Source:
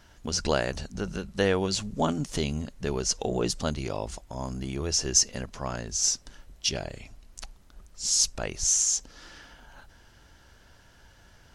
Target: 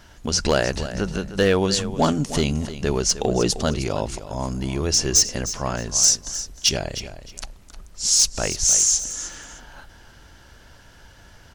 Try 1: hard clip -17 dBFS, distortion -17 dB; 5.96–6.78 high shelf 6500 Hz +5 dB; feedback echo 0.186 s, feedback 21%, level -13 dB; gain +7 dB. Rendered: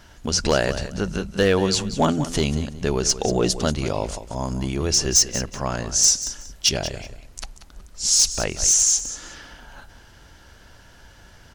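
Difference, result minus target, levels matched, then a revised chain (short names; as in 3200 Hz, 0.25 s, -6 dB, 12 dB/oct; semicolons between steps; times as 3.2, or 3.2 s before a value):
echo 0.123 s early
hard clip -17 dBFS, distortion -17 dB; 5.96–6.78 high shelf 6500 Hz +5 dB; feedback echo 0.309 s, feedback 21%, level -13 dB; gain +7 dB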